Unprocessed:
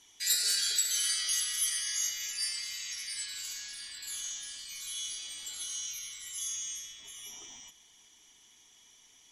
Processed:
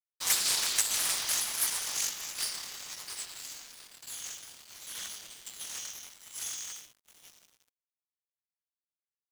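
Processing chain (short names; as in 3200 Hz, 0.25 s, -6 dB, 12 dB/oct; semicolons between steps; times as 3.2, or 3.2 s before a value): cycle switcher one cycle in 2, inverted; high shelf 3700 Hz +3 dB; crossover distortion -41 dBFS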